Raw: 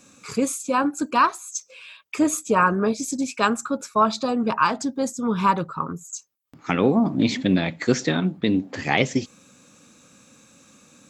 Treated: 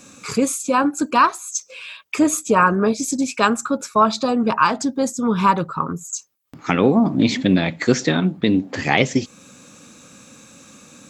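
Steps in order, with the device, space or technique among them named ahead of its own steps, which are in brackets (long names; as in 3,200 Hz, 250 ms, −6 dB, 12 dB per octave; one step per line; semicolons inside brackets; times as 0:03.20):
parallel compression (in parallel at −2 dB: downward compressor, threshold −33 dBFS, peak gain reduction 18.5 dB)
on the sum: level +2.5 dB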